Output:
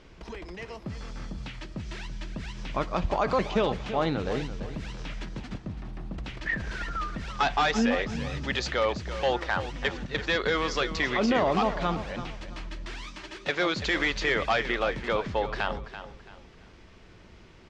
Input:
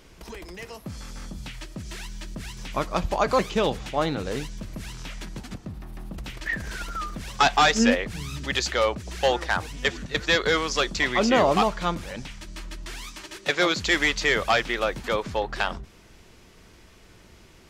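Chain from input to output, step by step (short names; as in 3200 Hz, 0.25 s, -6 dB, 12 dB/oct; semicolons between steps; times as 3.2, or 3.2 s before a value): limiter -15 dBFS, peak gain reduction 7.5 dB; air absorption 130 m; feedback echo 0.335 s, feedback 31%, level -12 dB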